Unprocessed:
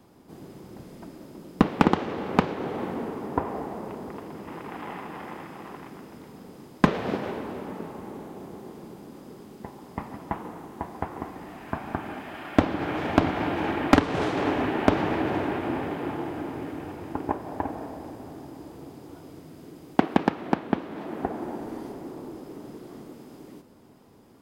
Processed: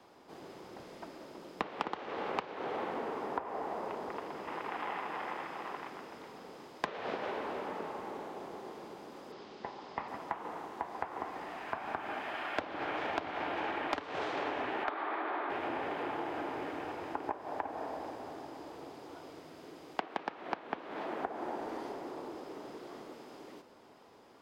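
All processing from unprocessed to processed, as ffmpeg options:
-filter_complex "[0:a]asettb=1/sr,asplit=3[s0][s1][s2];[s0]atrim=end=9.324[s3];[s1]atrim=start=9.32:end=10.08,asetpts=PTS-STARTPTS,afade=t=in:d=0.004:c=qsin,afade=t=out:st=0.756:d=0.004:c=qsin,lowpass=f=5000:w=0.5412,lowpass=f=5000:w=1.3066,aemphasis=mode=production:type=50kf[s4];[s2]atrim=start=10.076[s5];[s3][s4]acrossfade=d=0.004:c1=hsin:c2=qsin[s6];[s6][s5]acrossfade=d=0.004:c1=qsin:c2=hsin,asettb=1/sr,asplit=3[s7][s8][s9];[s7]atrim=end=14.844[s10];[s8]atrim=start=14.84:end=15.5,asetpts=PTS-STARTPTS,afade=t=in:d=0.004:c=qsin,afade=t=out:st=0.656:d=0.004:c=qsin,highpass=f=290:w=0.5412,highpass=f=290:w=1.3066,equalizer=f=500:t=q:w=4:g=-7,equalizer=f=1200:t=q:w=4:g=7,equalizer=f=2800:t=q:w=4:g=-7,lowpass=f=3700:w=0.5412,lowpass=f=3700:w=1.3066,aeval=exprs='clip(val(0),-1,0.188)':c=same[s11];[s9]atrim=start=15.496[s12];[s10][s11]acrossfade=d=0.004:c1=hsin:c2=qsin[s13];[s13][s12]acrossfade=d=0.004:c1=qsin:c2=hsin,acrossover=split=420 6300:gain=0.158 1 0.224[s14][s15][s16];[s14][s15][s16]amix=inputs=3:normalize=0,acompressor=threshold=0.0178:ratio=6,volume=1.26"

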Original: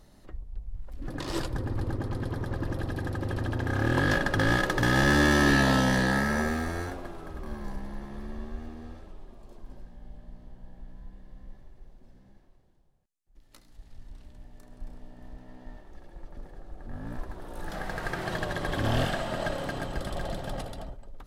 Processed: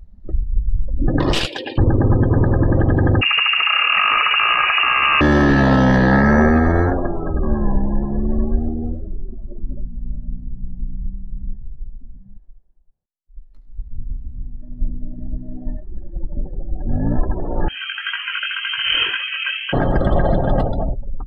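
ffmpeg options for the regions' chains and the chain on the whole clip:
-filter_complex "[0:a]asettb=1/sr,asplit=3[s0][s1][s2];[s0]atrim=end=1.334[s3];[s1]atrim=start=1.33:end=1.78,asetpts=PTS-STARTPTS,afade=t=in:d=0.004:c=qsin,afade=t=out:st=0.446:d=0.004:c=qsin,highpass=600,highshelf=f=1900:t=q:w=3:g=13,aeval=exprs='clip(val(0),-1,0.0299)':c=same[s4];[s2]atrim=start=1.776[s5];[s3][s4]acrossfade=d=0.004:c1=hsin:c2=qsin[s6];[s6][s5]acrossfade=d=0.004:c1=qsin:c2=hsin,asettb=1/sr,asplit=3[s7][s8][s9];[s7]atrim=end=3.214[s10];[s8]atrim=start=3.21:end=5.21,asetpts=PTS-STARTPTS,afade=t=in:d=0.004:c=qsin,afade=t=out:st=1.996:d=0.004:c=qsin,aeval=exprs='val(0)+0.5*0.0266*sgn(val(0))':c=same,lowpass=f=2500:t=q:w=0.5098,lowpass=f=2500:t=q:w=0.6013,lowpass=f=2500:t=q:w=0.9,lowpass=f=2500:t=q:w=2.563,afreqshift=-2900[s11];[s9]atrim=start=5.206[s12];[s10][s11]acrossfade=d=0.004:c1=hsin:c2=qsin[s13];[s13][s12]acrossfade=d=0.004:c1=qsin:c2=hsin,asettb=1/sr,asplit=3[s14][s15][s16];[s14]atrim=end=17.684[s17];[s15]atrim=start=17.68:end=19.73,asetpts=PTS-STARTPTS,afade=t=in:d=0.004:c=qsin,afade=t=out:st=2.046:d=0.004:c=qsin,lowpass=f=2700:t=q:w=0.5098,lowpass=f=2700:t=q:w=0.6013,lowpass=f=2700:t=q:w=0.9,lowpass=f=2700:t=q:w=2.563,afreqshift=-3200,aeval=exprs='sgn(val(0))*max(abs(val(0))-0.00531,0)':c=same,flanger=delay=18.5:depth=3.1:speed=1.9[s18];[s16]atrim=start=19.726[s19];[s17][s18]acrossfade=d=0.004:c1=hsin:c2=qsin[s20];[s20][s19]acrossfade=d=0.004:c1=qsin:c2=hsin,afftdn=nr=28:nf=-42,lowpass=f=1100:p=1,alimiter=level_in=16.8:limit=0.891:release=50:level=0:latency=1,volume=0.562"

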